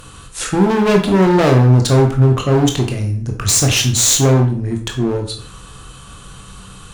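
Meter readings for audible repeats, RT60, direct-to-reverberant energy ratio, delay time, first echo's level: no echo audible, 0.45 s, 2.5 dB, no echo audible, no echo audible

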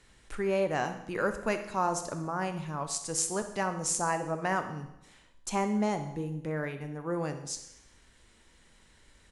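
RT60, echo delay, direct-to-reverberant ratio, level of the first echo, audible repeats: 0.85 s, 64 ms, 7.0 dB, −15.0 dB, 1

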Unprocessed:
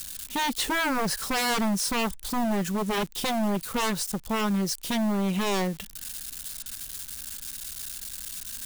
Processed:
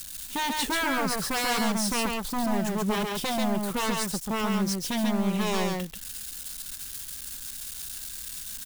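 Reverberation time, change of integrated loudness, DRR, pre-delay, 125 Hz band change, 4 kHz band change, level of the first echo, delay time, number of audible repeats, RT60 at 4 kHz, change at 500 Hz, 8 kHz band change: no reverb audible, 0.0 dB, no reverb audible, no reverb audible, 0.0 dB, 0.0 dB, −3.0 dB, 137 ms, 1, no reverb audible, 0.0 dB, −0.5 dB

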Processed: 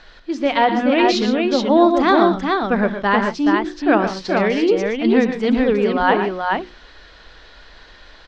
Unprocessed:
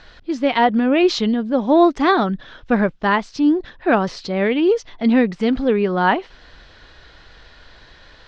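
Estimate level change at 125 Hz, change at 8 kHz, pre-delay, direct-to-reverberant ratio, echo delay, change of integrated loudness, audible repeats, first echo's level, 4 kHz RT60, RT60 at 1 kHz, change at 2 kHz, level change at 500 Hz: −1.0 dB, can't be measured, no reverb audible, no reverb audible, 68 ms, +1.0 dB, 3, −18.5 dB, no reverb audible, no reverb audible, +2.0 dB, +1.5 dB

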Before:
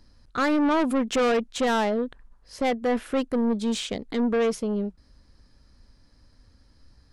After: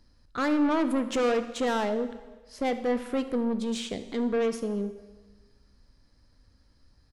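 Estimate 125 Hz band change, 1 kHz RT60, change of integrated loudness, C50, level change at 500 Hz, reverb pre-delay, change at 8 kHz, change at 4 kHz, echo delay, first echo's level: can't be measured, 1.3 s, −3.0 dB, 11.5 dB, −3.0 dB, 5 ms, −4.5 dB, −4.5 dB, 74 ms, −18.0 dB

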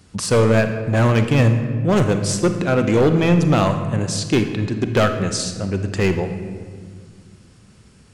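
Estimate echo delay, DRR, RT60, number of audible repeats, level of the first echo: no echo audible, 7.0 dB, 1.8 s, no echo audible, no echo audible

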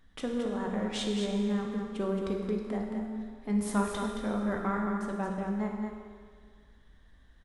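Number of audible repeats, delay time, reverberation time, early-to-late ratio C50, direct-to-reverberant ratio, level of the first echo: 1, 221 ms, 1.9 s, 1.0 dB, −0.5 dB, −6.5 dB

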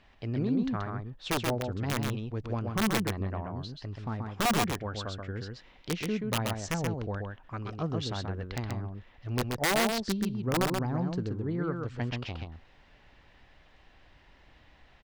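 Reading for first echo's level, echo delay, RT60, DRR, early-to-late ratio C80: −4.0 dB, 130 ms, no reverb audible, no reverb audible, no reverb audible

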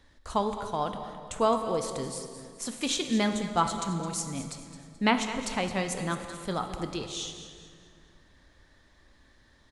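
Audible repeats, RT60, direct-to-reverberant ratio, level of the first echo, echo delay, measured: 3, 2.3 s, 5.5 dB, −13.0 dB, 215 ms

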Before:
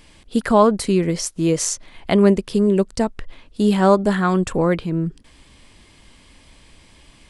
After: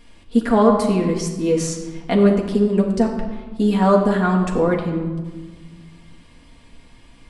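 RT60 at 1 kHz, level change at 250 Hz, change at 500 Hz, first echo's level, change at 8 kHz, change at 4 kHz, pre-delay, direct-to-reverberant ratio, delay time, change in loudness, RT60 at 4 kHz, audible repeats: 1.3 s, +1.0 dB, 0.0 dB, no echo audible, −6.0 dB, −4.0 dB, 4 ms, −1.0 dB, no echo audible, 0.0 dB, 0.90 s, no echo audible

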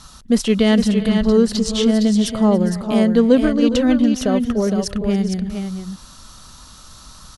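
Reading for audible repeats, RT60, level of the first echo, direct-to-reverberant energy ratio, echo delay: 3, no reverb audible, −20.0 dB, no reverb audible, 283 ms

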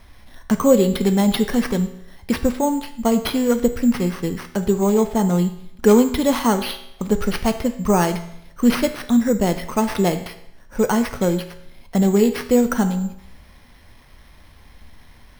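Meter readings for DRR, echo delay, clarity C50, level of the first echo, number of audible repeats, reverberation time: 8.0 dB, no echo audible, 11.5 dB, no echo audible, no echo audible, 0.75 s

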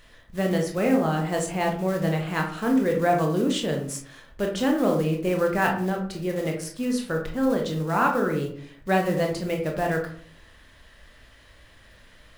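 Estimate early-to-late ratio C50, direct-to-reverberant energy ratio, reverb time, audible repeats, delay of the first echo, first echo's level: 7.5 dB, 1.0 dB, 0.55 s, no echo audible, no echo audible, no echo audible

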